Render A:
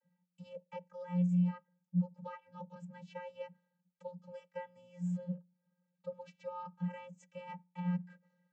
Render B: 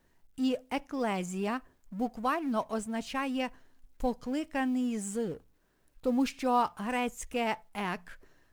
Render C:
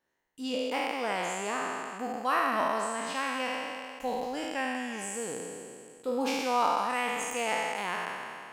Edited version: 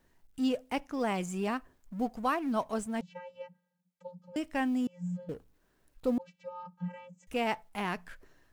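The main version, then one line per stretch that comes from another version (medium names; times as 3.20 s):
B
3.01–4.36 s: from A
4.87–5.29 s: from A
6.18–7.27 s: from A
not used: C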